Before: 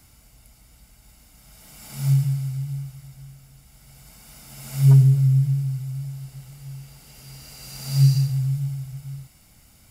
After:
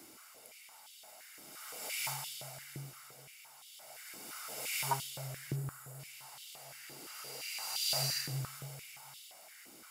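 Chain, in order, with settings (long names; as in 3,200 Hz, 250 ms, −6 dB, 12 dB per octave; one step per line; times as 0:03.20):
gain on a spectral selection 0:05.55–0:06.00, 2,000–6,700 Hz −8 dB
high-pass on a step sequencer 5.8 Hz 340–3,300 Hz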